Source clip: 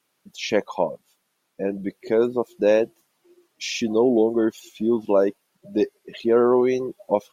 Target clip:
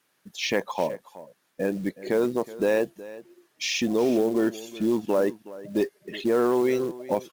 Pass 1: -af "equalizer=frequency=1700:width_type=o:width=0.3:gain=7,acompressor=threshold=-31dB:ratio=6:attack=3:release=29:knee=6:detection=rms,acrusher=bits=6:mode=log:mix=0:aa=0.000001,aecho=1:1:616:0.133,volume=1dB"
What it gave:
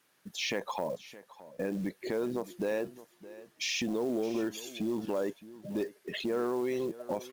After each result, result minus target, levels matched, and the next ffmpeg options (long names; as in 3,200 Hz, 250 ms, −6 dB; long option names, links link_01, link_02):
echo 246 ms late; downward compressor: peak gain reduction +9.5 dB
-af "equalizer=frequency=1700:width_type=o:width=0.3:gain=7,acompressor=threshold=-31dB:ratio=6:attack=3:release=29:knee=6:detection=rms,acrusher=bits=6:mode=log:mix=0:aa=0.000001,aecho=1:1:370:0.133,volume=1dB"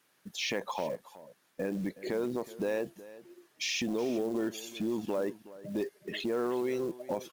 downward compressor: peak gain reduction +9.5 dB
-af "equalizer=frequency=1700:width_type=o:width=0.3:gain=7,acompressor=threshold=-19.5dB:ratio=6:attack=3:release=29:knee=6:detection=rms,acrusher=bits=6:mode=log:mix=0:aa=0.000001,aecho=1:1:370:0.133,volume=1dB"